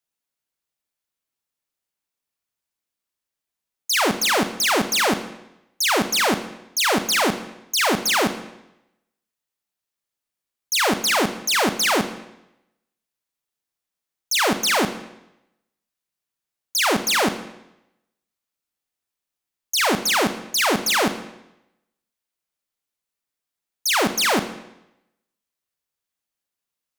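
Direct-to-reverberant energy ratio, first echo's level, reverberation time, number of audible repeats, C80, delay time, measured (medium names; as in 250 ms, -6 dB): 9.0 dB, no echo, 0.90 s, no echo, 13.5 dB, no echo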